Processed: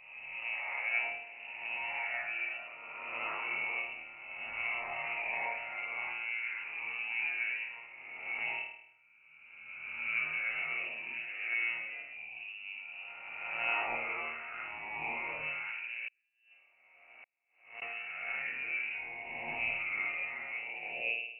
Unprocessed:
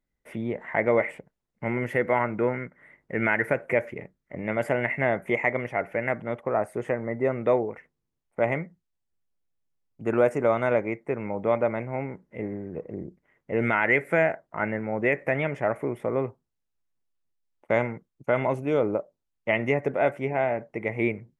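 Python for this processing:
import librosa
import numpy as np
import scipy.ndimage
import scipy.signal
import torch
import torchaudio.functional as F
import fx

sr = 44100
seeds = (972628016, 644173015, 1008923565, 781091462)

y = fx.spec_swells(x, sr, rise_s=1.9)
y = scipy.signal.sosfilt(scipy.signal.butter(2, 53.0, 'highpass', fs=sr, output='sos'), y)
y = fx.peak_eq(y, sr, hz=110.0, db=11.0, octaves=2.1)
y = fx.hum_notches(y, sr, base_hz=60, count=4)
y = fx.transient(y, sr, attack_db=-4, sustain_db=4)
y = fx.resonator_bank(y, sr, root=39, chord='major', decay_s=0.72)
y = fx.gate_flip(y, sr, shuts_db=-41.0, range_db=-39, at=(16.08, 17.82))
y = fx.freq_invert(y, sr, carrier_hz=2800)
y = fx.pre_swell(y, sr, db_per_s=120.0)
y = y * 10.0 ** (-2.0 / 20.0)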